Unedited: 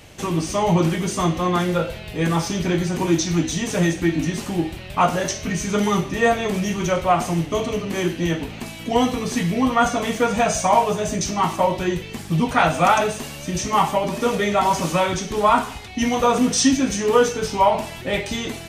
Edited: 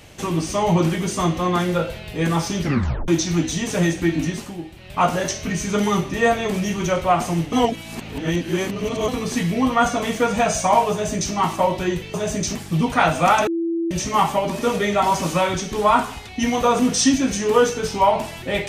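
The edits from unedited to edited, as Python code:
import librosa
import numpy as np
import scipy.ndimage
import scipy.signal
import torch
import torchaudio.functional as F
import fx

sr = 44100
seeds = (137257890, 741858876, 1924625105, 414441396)

y = fx.edit(x, sr, fx.tape_stop(start_s=2.62, length_s=0.46),
    fx.fade_down_up(start_s=4.26, length_s=0.8, db=-10.0, fade_s=0.31),
    fx.reverse_span(start_s=7.53, length_s=1.55),
    fx.duplicate(start_s=10.92, length_s=0.41, to_s=12.14),
    fx.bleep(start_s=13.06, length_s=0.44, hz=334.0, db=-19.5), tone=tone)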